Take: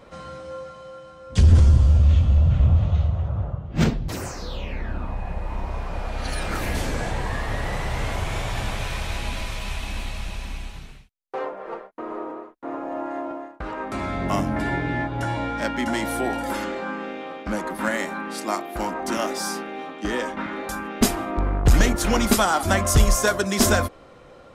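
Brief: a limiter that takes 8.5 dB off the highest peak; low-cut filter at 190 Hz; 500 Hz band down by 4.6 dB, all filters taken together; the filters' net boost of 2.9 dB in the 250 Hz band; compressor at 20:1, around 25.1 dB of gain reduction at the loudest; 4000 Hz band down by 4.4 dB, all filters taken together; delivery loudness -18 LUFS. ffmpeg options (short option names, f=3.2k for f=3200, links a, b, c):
-af "highpass=190,equalizer=f=250:t=o:g=7.5,equalizer=f=500:t=o:g=-8.5,equalizer=f=4k:t=o:g=-6,acompressor=threshold=-36dB:ratio=20,volume=24.5dB,alimiter=limit=-8.5dB:level=0:latency=1"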